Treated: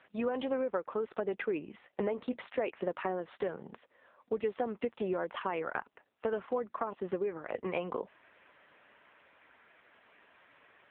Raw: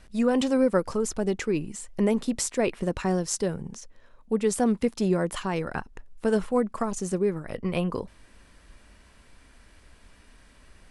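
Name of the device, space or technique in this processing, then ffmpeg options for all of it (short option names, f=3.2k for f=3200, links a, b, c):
voicemail: -filter_complex "[0:a]asettb=1/sr,asplit=3[a][b][c];[a]atrim=end=1.804[d];[b]atrim=start=1.8:end=2.4,asetpts=PTS-STARTPTS,afade=t=in:d=0.004:c=qsin,afade=t=out:st=0.596:d=0.004:c=qsin,asplit=2[e][f];[f]adelay=16,volume=-10dB[g];[e][g]amix=inputs=2:normalize=0,atrim=end_sample=26460[h];[c]atrim=start=2.396[i];[d][h]acrossfade=d=0.004:c1=hsin:c2=qsin[j];[j][i]acrossfade=d=0.004:c1=qsin:c2=hsin,highpass=440,lowpass=2.9k,acompressor=threshold=-32dB:ratio=6,volume=3dB" -ar 8000 -c:a libopencore_amrnb -b:a 6700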